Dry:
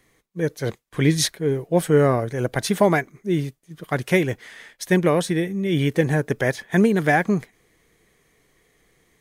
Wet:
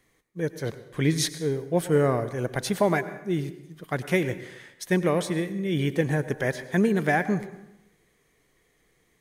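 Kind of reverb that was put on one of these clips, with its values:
dense smooth reverb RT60 0.89 s, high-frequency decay 0.75×, pre-delay 85 ms, DRR 13 dB
level −5 dB

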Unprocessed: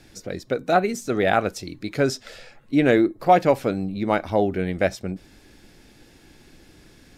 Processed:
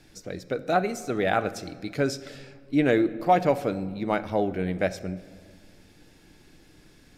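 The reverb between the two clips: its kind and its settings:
rectangular room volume 2,500 cubic metres, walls mixed, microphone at 0.46 metres
level −4.5 dB

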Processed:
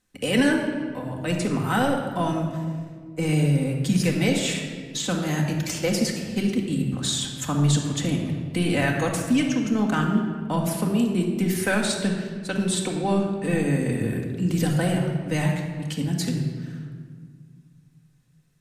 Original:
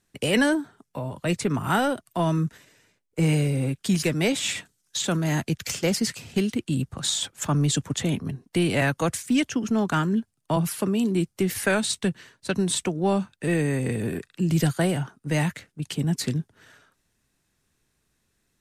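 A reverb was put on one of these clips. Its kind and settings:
rectangular room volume 2,400 cubic metres, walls mixed, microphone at 2 metres
level −2.5 dB

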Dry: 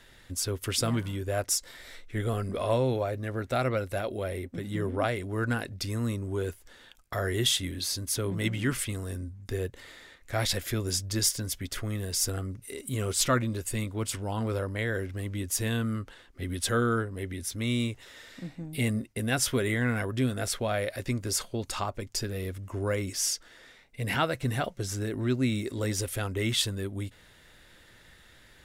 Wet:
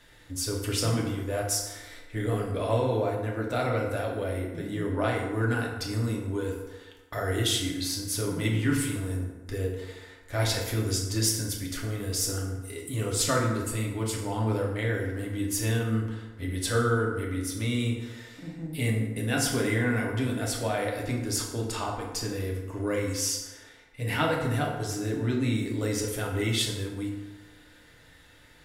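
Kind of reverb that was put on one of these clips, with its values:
feedback delay network reverb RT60 1.2 s, low-frequency decay 0.9×, high-frequency decay 0.55×, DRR −2 dB
level −3 dB

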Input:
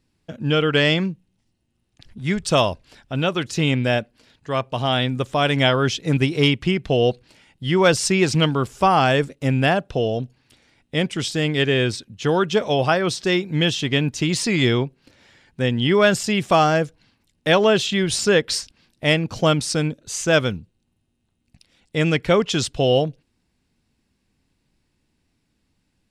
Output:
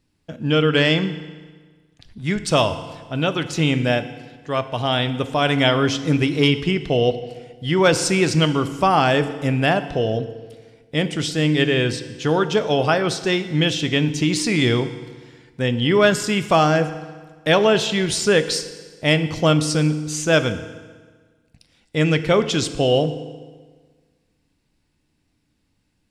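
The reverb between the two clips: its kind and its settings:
feedback delay network reverb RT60 1.5 s, low-frequency decay 1.05×, high-frequency decay 0.85×, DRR 10 dB

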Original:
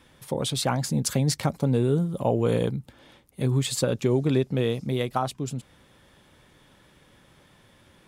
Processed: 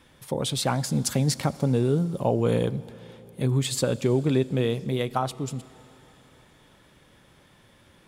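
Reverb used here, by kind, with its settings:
four-comb reverb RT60 3.8 s, combs from 27 ms, DRR 18 dB

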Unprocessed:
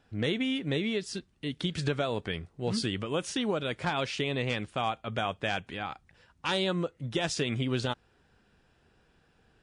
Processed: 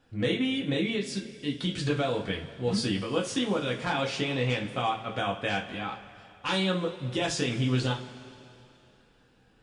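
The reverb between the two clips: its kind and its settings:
coupled-rooms reverb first 0.26 s, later 2.9 s, from −20 dB, DRR −1.5 dB
level −2 dB

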